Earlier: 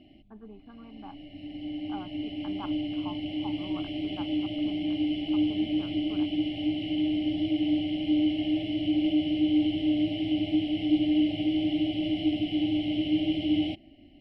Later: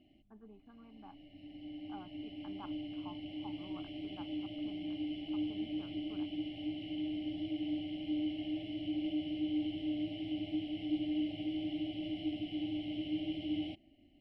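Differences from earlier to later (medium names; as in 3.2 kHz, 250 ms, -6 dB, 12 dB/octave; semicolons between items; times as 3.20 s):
speech -9.0 dB; background -11.0 dB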